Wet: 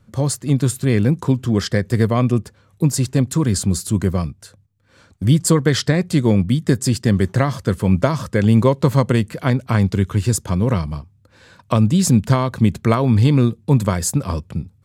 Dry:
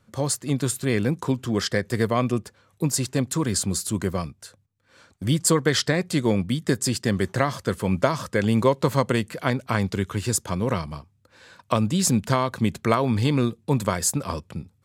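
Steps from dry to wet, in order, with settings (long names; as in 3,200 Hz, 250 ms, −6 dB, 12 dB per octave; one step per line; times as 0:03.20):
low-shelf EQ 240 Hz +11 dB
level +1 dB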